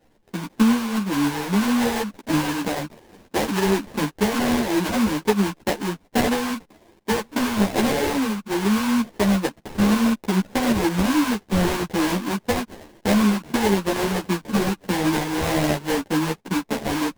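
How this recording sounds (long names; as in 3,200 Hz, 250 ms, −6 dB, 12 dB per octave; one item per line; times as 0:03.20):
aliases and images of a low sample rate 1,300 Hz, jitter 20%
a shimmering, thickened sound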